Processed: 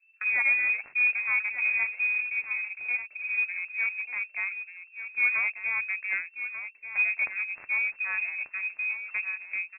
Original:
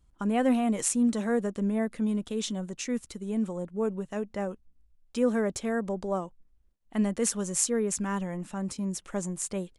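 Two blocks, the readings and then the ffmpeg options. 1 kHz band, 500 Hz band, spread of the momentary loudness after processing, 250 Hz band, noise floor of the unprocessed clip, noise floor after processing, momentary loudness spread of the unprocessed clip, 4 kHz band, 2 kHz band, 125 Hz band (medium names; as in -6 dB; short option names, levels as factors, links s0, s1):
-8.5 dB, under -25 dB, 9 LU, under -35 dB, -64 dBFS, -56 dBFS, 9 LU, under -35 dB, +18.5 dB, under -30 dB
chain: -filter_complex "[0:a]highshelf=f=2100:g=4,acrusher=bits=3:mode=log:mix=0:aa=0.000001,adynamicsmooth=sensitivity=1:basefreq=770,asplit=2[s0][s1];[s1]aecho=0:1:1189:0.299[s2];[s0][s2]amix=inputs=2:normalize=0,lowpass=f=2300:t=q:w=0.5098,lowpass=f=2300:t=q:w=0.6013,lowpass=f=2300:t=q:w=0.9,lowpass=f=2300:t=q:w=2.563,afreqshift=-2700"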